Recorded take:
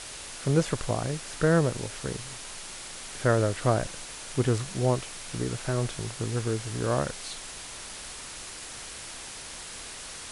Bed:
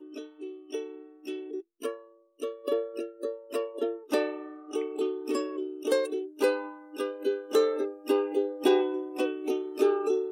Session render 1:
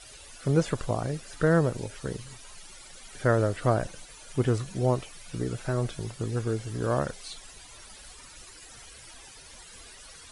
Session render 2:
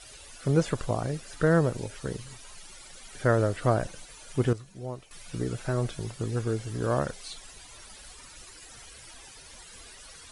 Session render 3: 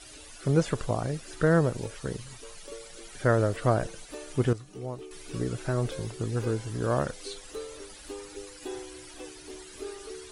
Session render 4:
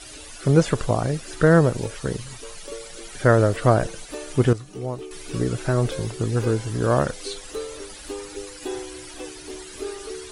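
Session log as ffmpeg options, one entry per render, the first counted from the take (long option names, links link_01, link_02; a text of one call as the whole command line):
ffmpeg -i in.wav -af "afftdn=noise_reduction=14:noise_floor=-41" out.wav
ffmpeg -i in.wav -filter_complex "[0:a]asplit=3[link_01][link_02][link_03];[link_01]atrim=end=4.532[link_04];[link_02]atrim=start=4.528:end=5.112,asetpts=PTS-STARTPTS,volume=-12dB[link_05];[link_03]atrim=start=5.108[link_06];[link_04][link_05]acrossfade=duration=0.004:curve1=hsin:curve2=hsin[link_07];[link_07][link_06]acrossfade=duration=0.004:curve1=hsin:curve2=hsin" out.wav
ffmpeg -i in.wav -i bed.wav -filter_complex "[1:a]volume=-15.5dB[link_01];[0:a][link_01]amix=inputs=2:normalize=0" out.wav
ffmpeg -i in.wav -af "volume=7dB" out.wav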